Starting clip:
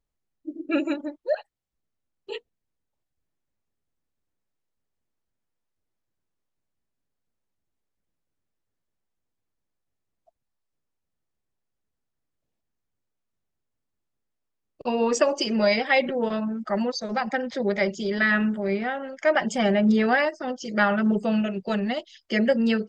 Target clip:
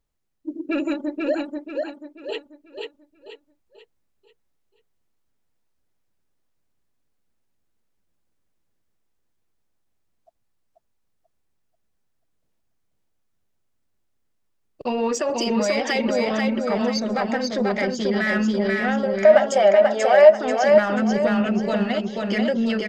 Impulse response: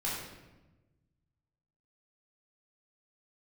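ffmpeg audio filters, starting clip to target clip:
-filter_complex "[0:a]asplit=2[link_01][link_02];[link_02]asoftclip=type=tanh:threshold=-25dB,volume=-6.5dB[link_03];[link_01][link_03]amix=inputs=2:normalize=0,alimiter=limit=-17dB:level=0:latency=1:release=77,asettb=1/sr,asplit=3[link_04][link_05][link_06];[link_04]atrim=end=19.034[link_07];[link_05]atrim=start=19.03:end=20.39,asetpts=PTS-STARTPTS,afade=type=in:duration=0.004:curve=qsin,afade=type=out:start_time=1.356:duration=0.004:curve=qsin,highpass=frequency=600:width_type=q:width=4.9[link_08];[link_06]atrim=start=20.386[link_09];[link_07][link_08]acrossfade=duration=0.004:curve1=hsin:curve2=qsin[link_10];[link_10][link_09]acrossfade=duration=0.004:curve1=qsin:curve2=hsin,aecho=1:1:487|974|1461|1948|2435:0.708|0.269|0.102|0.0388|0.0148,volume=1dB"

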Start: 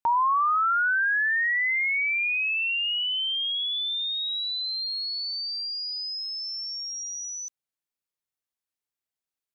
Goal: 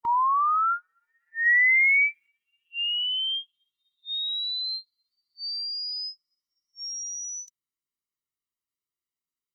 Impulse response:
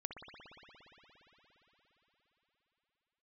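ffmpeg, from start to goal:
-filter_complex "[0:a]asplit=3[link_01][link_02][link_03];[link_01]afade=type=out:start_time=1.45:duration=0.02[link_04];[link_02]acontrast=44,afade=type=in:start_time=1.45:duration=0.02,afade=type=out:start_time=2.26:duration=0.02[link_05];[link_03]afade=type=in:start_time=2.26:duration=0.02[link_06];[link_04][link_05][link_06]amix=inputs=3:normalize=0,afftfilt=real='re*eq(mod(floor(b*sr/1024/460),2),0)':imag='im*eq(mod(floor(b*sr/1024/460),2),0)':win_size=1024:overlap=0.75"

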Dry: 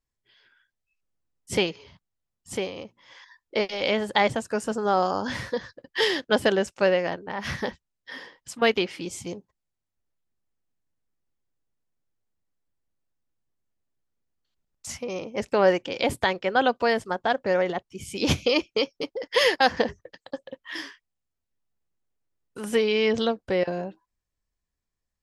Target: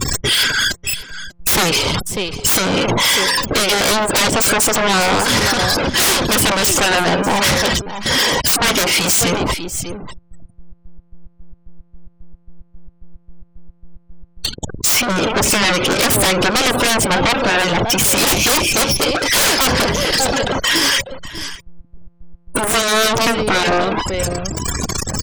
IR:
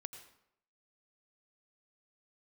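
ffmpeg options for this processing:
-filter_complex "[0:a]aeval=exprs='val(0)+0.5*0.0447*sgn(val(0))':channel_layout=same,afftfilt=real='re*gte(hypot(re,im),0.0158)':imag='im*gte(hypot(re,im),0.0158)':win_size=1024:overlap=0.75,aecho=1:1:594:0.15,acrossover=split=1100[link_01][link_02];[link_01]aeval=exprs='val(0)*(1-0.5/2+0.5/2*cos(2*PI*3.7*n/s))':channel_layout=same[link_03];[link_02]aeval=exprs='val(0)*(1-0.5/2-0.5/2*cos(2*PI*3.7*n/s))':channel_layout=same[link_04];[link_03][link_04]amix=inputs=2:normalize=0,asplit=2[link_05][link_06];[link_06]acompressor=threshold=-32dB:ratio=6,volume=-2.5dB[link_07];[link_05][link_07]amix=inputs=2:normalize=0,aemphasis=mode=production:type=50kf,bandreject=frequency=1800:width=6.8,aeval=exprs='0.596*sin(PI/2*8.91*val(0)/0.596)':channel_layout=same,afftfilt=real='re*lt(hypot(re,im),2.82)':imag='im*lt(hypot(re,im),2.82)':win_size=1024:overlap=0.75,volume=-6dB"

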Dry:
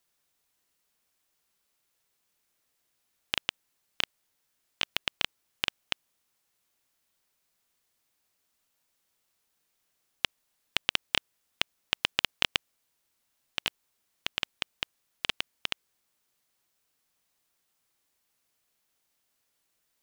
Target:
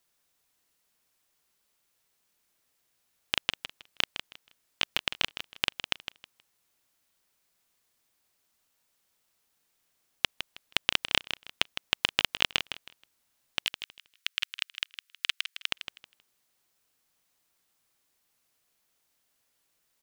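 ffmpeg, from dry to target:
ffmpeg -i in.wav -filter_complex "[0:a]asplit=3[link_01][link_02][link_03];[link_01]afade=type=out:start_time=13.65:duration=0.02[link_04];[link_02]highpass=frequency=1400:width=0.5412,highpass=frequency=1400:width=1.3066,afade=type=in:start_time=13.65:duration=0.02,afade=type=out:start_time=15.69:duration=0.02[link_05];[link_03]afade=type=in:start_time=15.69:duration=0.02[link_06];[link_04][link_05][link_06]amix=inputs=3:normalize=0,aecho=1:1:159|318|477:0.316|0.0727|0.0167,volume=1.5dB" out.wav

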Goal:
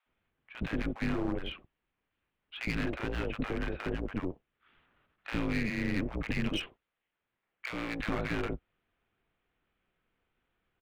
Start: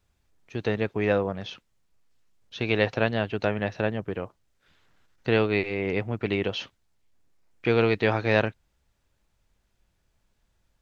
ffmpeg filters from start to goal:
ffmpeg -i in.wav -filter_complex "[0:a]acontrast=24,highpass=frequency=150:width_type=q:width=0.5412,highpass=frequency=150:width_type=q:width=1.307,lowpass=frequency=3300:width_type=q:width=0.5176,lowpass=frequency=3300:width_type=q:width=0.7071,lowpass=frequency=3300:width_type=q:width=1.932,afreqshift=-170,aeval=exprs='clip(val(0),-1,0.0376)':channel_layout=same,alimiter=limit=-15.5dB:level=0:latency=1:release=46,asettb=1/sr,asplit=3[link_01][link_02][link_03];[link_01]atrim=end=6.614[link_04];[link_02]atrim=start=6.61:end=7.94,asetpts=PTS-STARTPTS,afade=type=in:duration=0.004:curve=qsin,afade=type=out:start_time=1.326:duration=0.004:curve=qsin,lowshelf=frequency=300:gain=-12[link_05];[link_03]atrim=start=7.936[link_06];[link_04][link_05]acrossfade=duration=0.004:curve1=hsin:curve2=qsin[link_07];[link_07][link_06]acrossfade=duration=0.004:curve1=qsin:curve2=hsin,acrossover=split=700[link_08][link_09];[link_08]adelay=60[link_10];[link_10][link_09]amix=inputs=2:normalize=0,volume=-5dB" out.wav

